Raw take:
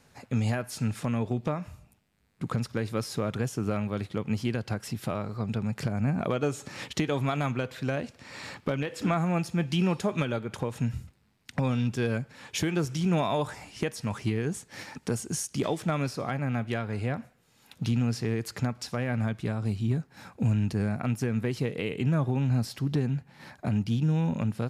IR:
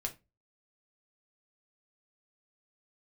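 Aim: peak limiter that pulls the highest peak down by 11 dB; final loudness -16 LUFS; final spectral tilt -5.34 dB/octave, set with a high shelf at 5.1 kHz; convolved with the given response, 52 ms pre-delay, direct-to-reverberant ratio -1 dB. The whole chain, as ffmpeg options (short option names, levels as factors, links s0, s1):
-filter_complex "[0:a]highshelf=f=5100:g=7,alimiter=level_in=1.33:limit=0.0631:level=0:latency=1,volume=0.75,asplit=2[s0][s1];[1:a]atrim=start_sample=2205,adelay=52[s2];[s1][s2]afir=irnorm=-1:irlink=0,volume=1.06[s3];[s0][s3]amix=inputs=2:normalize=0,volume=6.68"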